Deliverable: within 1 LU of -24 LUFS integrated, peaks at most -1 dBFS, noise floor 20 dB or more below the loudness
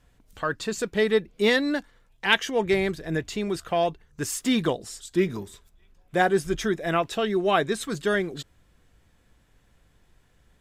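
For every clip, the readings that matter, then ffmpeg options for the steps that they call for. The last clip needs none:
loudness -25.5 LUFS; peak -4.5 dBFS; loudness target -24.0 LUFS
-> -af "volume=1.5dB"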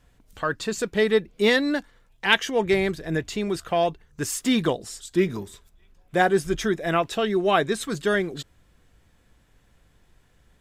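loudness -24.0 LUFS; peak -3.0 dBFS; noise floor -61 dBFS

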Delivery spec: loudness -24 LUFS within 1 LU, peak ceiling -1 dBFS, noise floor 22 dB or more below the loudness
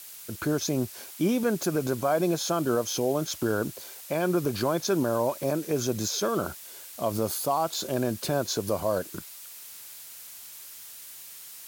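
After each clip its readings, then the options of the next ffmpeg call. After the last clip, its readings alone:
noise floor -45 dBFS; noise floor target -50 dBFS; loudness -28.0 LUFS; peak -14.0 dBFS; loudness target -24.0 LUFS
-> -af "afftdn=nr=6:nf=-45"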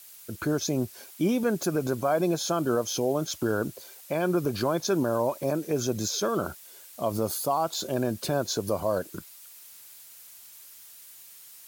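noise floor -49 dBFS; noise floor target -50 dBFS
-> -af "afftdn=nr=6:nf=-49"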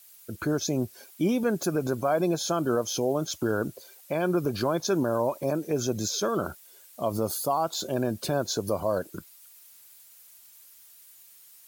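noise floor -53 dBFS; loudness -28.0 LUFS; peak -14.0 dBFS; loudness target -24.0 LUFS
-> -af "volume=4dB"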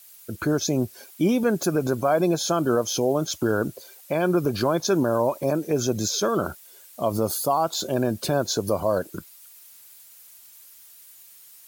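loudness -24.0 LUFS; peak -10.0 dBFS; noise floor -49 dBFS

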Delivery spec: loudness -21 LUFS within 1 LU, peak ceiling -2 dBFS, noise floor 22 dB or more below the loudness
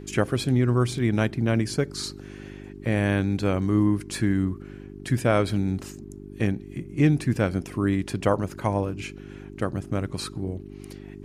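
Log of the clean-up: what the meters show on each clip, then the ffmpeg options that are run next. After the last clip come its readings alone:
hum 50 Hz; harmonics up to 400 Hz; hum level -38 dBFS; loudness -25.5 LUFS; peak -7.5 dBFS; loudness target -21.0 LUFS
-> -af "bandreject=f=50:t=h:w=4,bandreject=f=100:t=h:w=4,bandreject=f=150:t=h:w=4,bandreject=f=200:t=h:w=4,bandreject=f=250:t=h:w=4,bandreject=f=300:t=h:w=4,bandreject=f=350:t=h:w=4,bandreject=f=400:t=h:w=4"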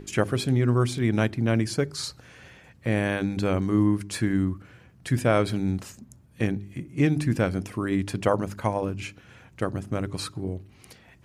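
hum none; loudness -26.5 LUFS; peak -8.0 dBFS; loudness target -21.0 LUFS
-> -af "volume=5.5dB"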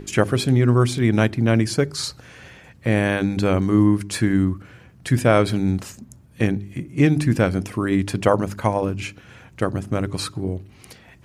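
loudness -21.0 LUFS; peak -2.5 dBFS; noise floor -49 dBFS

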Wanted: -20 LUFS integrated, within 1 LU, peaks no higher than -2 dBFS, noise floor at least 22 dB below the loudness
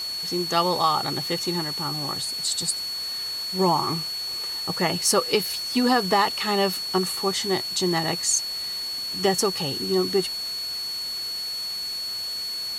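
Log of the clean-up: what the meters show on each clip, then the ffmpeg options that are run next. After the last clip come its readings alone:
steady tone 4400 Hz; tone level -28 dBFS; noise floor -31 dBFS; noise floor target -46 dBFS; loudness -24.0 LUFS; peak -8.0 dBFS; loudness target -20.0 LUFS
-> -af "bandreject=f=4.4k:w=30"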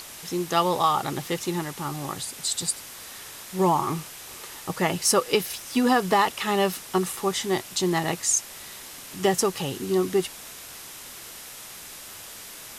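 steady tone none; noise floor -42 dBFS; noise floor target -47 dBFS
-> -af "afftdn=nr=6:nf=-42"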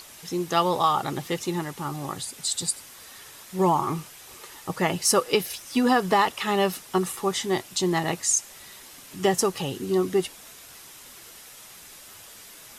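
noise floor -47 dBFS; loudness -25.0 LUFS; peak -8.0 dBFS; loudness target -20.0 LUFS
-> -af "volume=5dB"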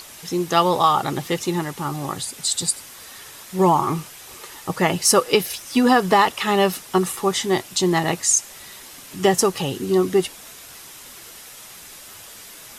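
loudness -20.0 LUFS; peak -3.0 dBFS; noise floor -42 dBFS

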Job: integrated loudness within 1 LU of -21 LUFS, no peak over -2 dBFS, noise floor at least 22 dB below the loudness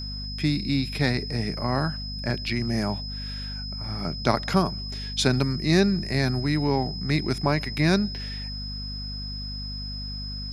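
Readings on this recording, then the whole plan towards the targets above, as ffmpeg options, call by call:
hum 50 Hz; harmonics up to 250 Hz; hum level -32 dBFS; steady tone 5100 Hz; tone level -35 dBFS; loudness -26.5 LUFS; peak -3.5 dBFS; loudness target -21.0 LUFS
-> -af "bandreject=f=50:t=h:w=6,bandreject=f=100:t=h:w=6,bandreject=f=150:t=h:w=6,bandreject=f=200:t=h:w=6,bandreject=f=250:t=h:w=6"
-af "bandreject=f=5.1k:w=30"
-af "volume=5.5dB,alimiter=limit=-2dB:level=0:latency=1"

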